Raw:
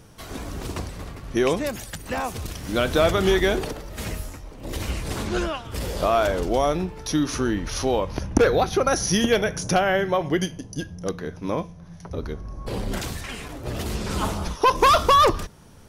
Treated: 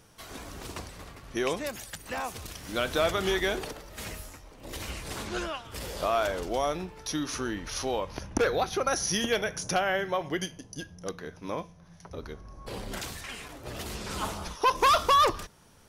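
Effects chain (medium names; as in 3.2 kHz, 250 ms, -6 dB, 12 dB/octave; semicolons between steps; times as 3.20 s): bass shelf 480 Hz -8 dB; trim -4 dB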